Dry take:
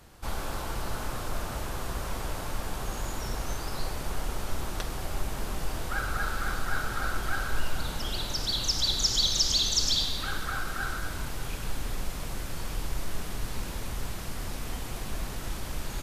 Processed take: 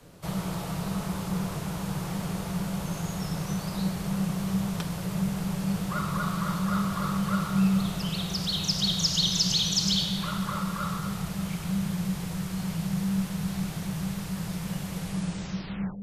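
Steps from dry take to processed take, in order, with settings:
turntable brake at the end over 1.06 s
noise in a band 270–790 Hz −57 dBFS
frequency shifter −200 Hz

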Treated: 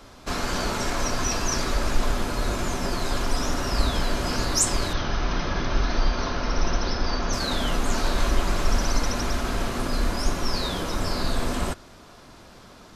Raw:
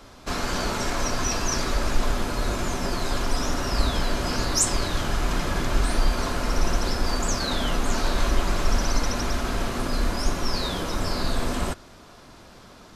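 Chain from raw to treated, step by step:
0:04.93–0:07.33: Chebyshev low-pass filter 6,200 Hz, order 8

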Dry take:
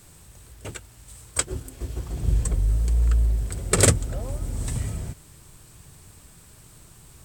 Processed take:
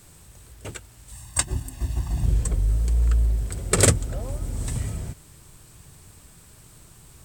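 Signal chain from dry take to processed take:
0:01.12–0:02.26: comb filter 1.1 ms, depth 92%

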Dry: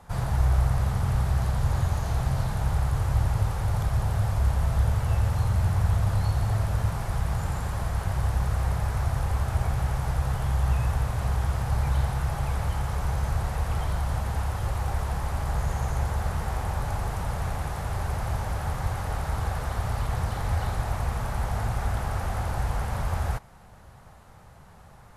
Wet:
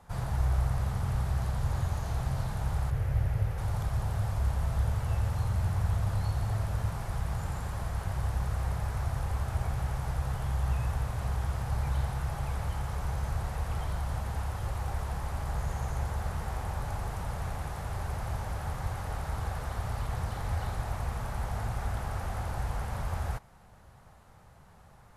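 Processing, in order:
0:02.90–0:03.58: octave-band graphic EQ 125/250/500/1,000/2,000/4,000/8,000 Hz +3/−5/+4/−8/+4/−5/−8 dB
level −5.5 dB

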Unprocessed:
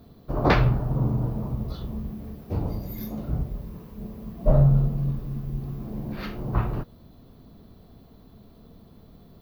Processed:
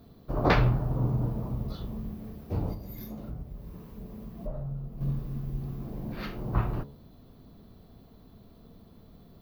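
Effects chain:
hum removal 70.86 Hz, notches 15
0:02.73–0:05.01: downward compressor 3 to 1, threshold −35 dBFS, peak gain reduction 16.5 dB
level −2.5 dB

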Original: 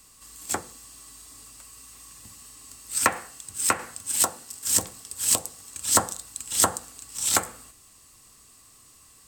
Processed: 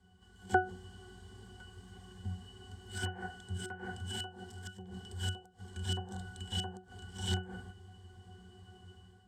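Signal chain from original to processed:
gate with flip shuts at −12 dBFS, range −25 dB
resonances in every octave F#, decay 0.25 s
automatic gain control gain up to 9 dB
level +12.5 dB

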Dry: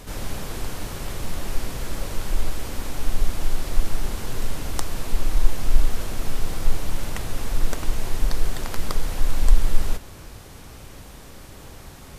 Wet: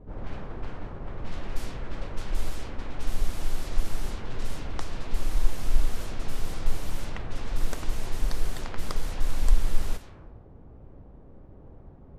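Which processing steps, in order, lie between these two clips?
low-pass that shuts in the quiet parts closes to 490 Hz, open at −13.5 dBFS
highs frequency-modulated by the lows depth 0.21 ms
level −5 dB

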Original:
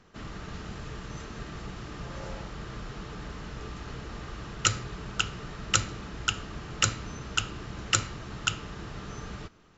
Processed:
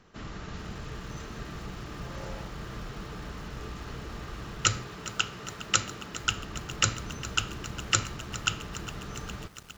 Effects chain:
0:04.83–0:06.24: high-pass filter 180 Hz 6 dB per octave
feedback echo at a low word length 409 ms, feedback 80%, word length 7 bits, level −14.5 dB

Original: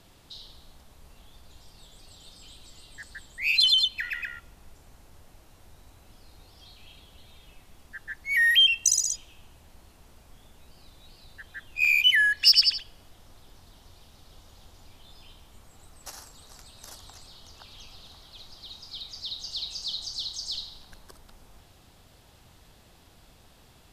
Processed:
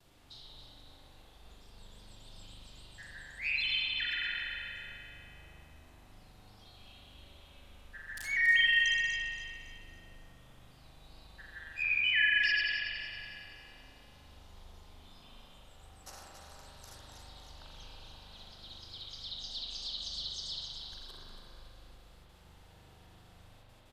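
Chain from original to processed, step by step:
0:08.17–0:08.71: spike at every zero crossing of −20.5 dBFS
noise gate with hold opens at −46 dBFS
treble cut that deepens with the level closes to 2,200 Hz, closed at −20.5 dBFS
on a send: repeating echo 279 ms, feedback 41%, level −8.5 dB
on the sum: spring reverb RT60 2.5 s, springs 40 ms, chirp 25 ms, DRR −4.5 dB
level −8.5 dB

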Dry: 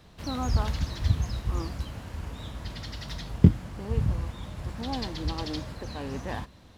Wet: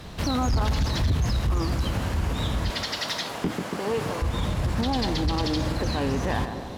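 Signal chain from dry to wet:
0:02.70–0:04.22: high-pass filter 400 Hz 12 dB per octave
tape delay 143 ms, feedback 73%, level −11.5 dB, low-pass 1,200 Hz
in parallel at −10 dB: sine wavefolder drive 10 dB, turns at −10.5 dBFS
on the sum: brickwall limiter −23 dBFS, peak gain reduction 9.5 dB
level +5.5 dB

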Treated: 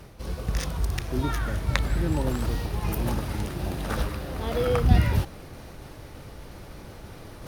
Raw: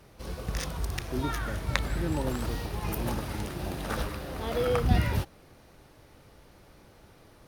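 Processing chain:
low-shelf EQ 180 Hz +5 dB
reversed playback
upward compression, threshold −33 dBFS
reversed playback
level +1.5 dB

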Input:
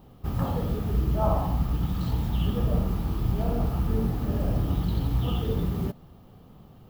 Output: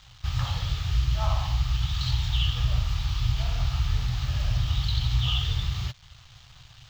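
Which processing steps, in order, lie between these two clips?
in parallel at +2 dB: downward compressor, threshold −37 dBFS, peak gain reduction 17 dB
on the sum: dead-zone distortion −47 dBFS
parametric band 440 Hz −10 dB 0.46 octaves
bit reduction 10 bits
drawn EQ curve 130 Hz 0 dB, 200 Hz −26 dB, 3,700 Hz +14 dB, 6,800 Hz +9 dB, 10,000 Hz −11 dB

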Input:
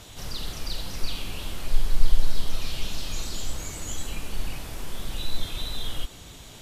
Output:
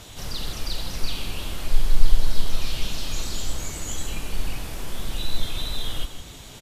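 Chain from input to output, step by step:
single-tap delay 156 ms −11.5 dB
level +2.5 dB

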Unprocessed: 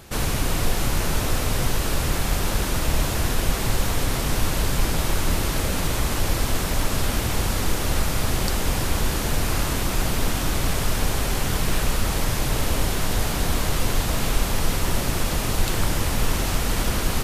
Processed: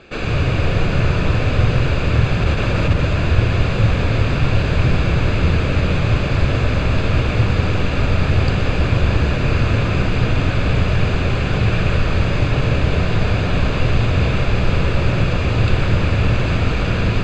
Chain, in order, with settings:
low-shelf EQ 68 Hz +12 dB
0:02.42–0:02.99: compressor whose output falls as the input rises −12 dBFS
high-frequency loss of the air 150 metres
convolution reverb RT60 0.85 s, pre-delay 116 ms, DRR 5 dB
level −3.5 dB

